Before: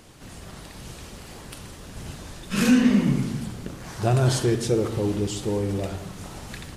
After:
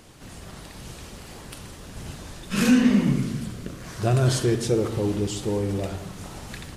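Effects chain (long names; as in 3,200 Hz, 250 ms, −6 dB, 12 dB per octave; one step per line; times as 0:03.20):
0:03.13–0:04.49: parametric band 840 Hz −10 dB 0.23 octaves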